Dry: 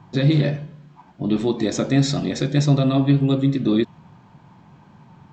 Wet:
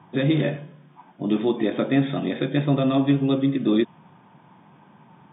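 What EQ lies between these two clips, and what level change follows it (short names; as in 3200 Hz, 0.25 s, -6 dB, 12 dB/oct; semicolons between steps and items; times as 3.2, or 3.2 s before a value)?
HPF 200 Hz 12 dB/oct; brick-wall FIR low-pass 3700 Hz; 0.0 dB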